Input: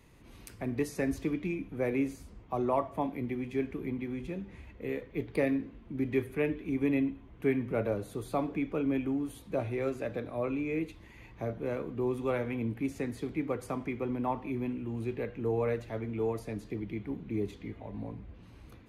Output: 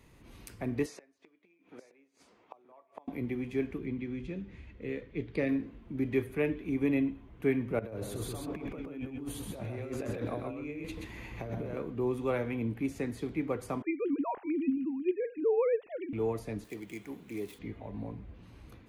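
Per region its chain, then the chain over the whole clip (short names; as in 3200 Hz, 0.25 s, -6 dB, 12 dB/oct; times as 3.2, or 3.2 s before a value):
0.86–3.08 flipped gate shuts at -28 dBFS, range -28 dB + BPF 460–6400 Hz + echo 0.923 s -17.5 dB
3.78–5.49 LPF 5800 Hz + bell 820 Hz -7 dB 1.4 oct
7.79–11.77 negative-ratio compressor -40 dBFS + echo 0.129 s -3.5 dB
13.82–16.13 sine-wave speech + low shelf 210 Hz +9.5 dB
16.64–17.59 median filter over 9 samples + RIAA curve recording
whole clip: dry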